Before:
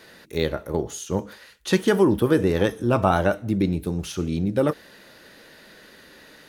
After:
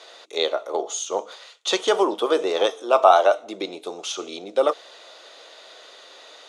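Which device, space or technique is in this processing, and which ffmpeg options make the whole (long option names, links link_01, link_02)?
phone speaker on a table: -filter_complex "[0:a]highpass=frequency=430:width=0.5412,highpass=frequency=430:width=1.3066,equalizer=frequency=700:width_type=q:width=4:gain=8,equalizer=frequency=1200:width_type=q:width=4:gain=6,equalizer=frequency=1700:width_type=q:width=4:gain=-10,equalizer=frequency=3500:width_type=q:width=4:gain=8,equalizer=frequency=6700:width_type=q:width=4:gain=5,lowpass=frequency=8300:width=0.5412,lowpass=frequency=8300:width=1.3066,asettb=1/sr,asplit=3[link_01][link_02][link_03];[link_01]atrim=end=2.714[link_04];[link_02]atrim=start=2.71:end=3.39,asetpts=PTS-STARTPTS,afade=type=in:duration=0.004:curve=qsin,afade=type=out:start_time=0.676:duration=0.004:curve=qsin,highpass=290[link_05];[link_03]atrim=start=3.386[link_06];[link_04][link_05]acrossfade=duration=0.004:curve1=hsin:curve2=qsin[link_07];[link_07][link_06]acrossfade=duration=0.004:curve1=qsin:curve2=hsin,volume=2.5dB"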